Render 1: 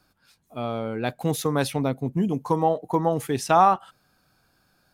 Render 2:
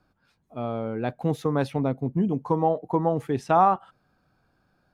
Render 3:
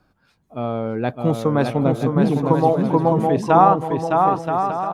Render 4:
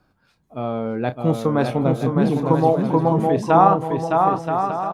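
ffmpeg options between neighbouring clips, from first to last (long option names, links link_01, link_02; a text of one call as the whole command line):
ffmpeg -i in.wav -af "lowpass=frequency=1200:poles=1" out.wav
ffmpeg -i in.wav -af "aecho=1:1:610|976|1196|1327|1406:0.631|0.398|0.251|0.158|0.1,volume=5.5dB" out.wav
ffmpeg -i in.wav -filter_complex "[0:a]asplit=2[link_01][link_02];[link_02]adelay=31,volume=-11dB[link_03];[link_01][link_03]amix=inputs=2:normalize=0,volume=-1dB" out.wav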